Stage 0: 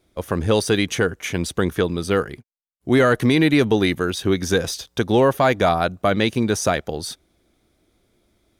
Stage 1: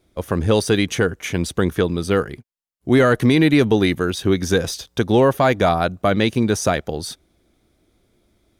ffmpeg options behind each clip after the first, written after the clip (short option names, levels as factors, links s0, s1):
-af "lowshelf=f=380:g=3"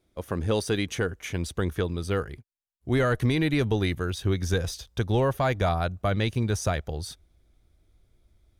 -af "asubboost=boost=6:cutoff=95,volume=0.376"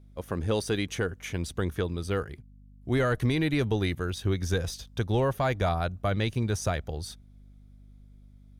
-af "aeval=exprs='val(0)+0.00355*(sin(2*PI*50*n/s)+sin(2*PI*2*50*n/s)/2+sin(2*PI*3*50*n/s)/3+sin(2*PI*4*50*n/s)/4+sin(2*PI*5*50*n/s)/5)':c=same,volume=0.794"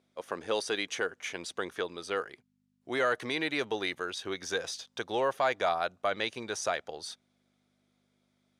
-af "highpass=520,lowpass=7700,volume=1.19"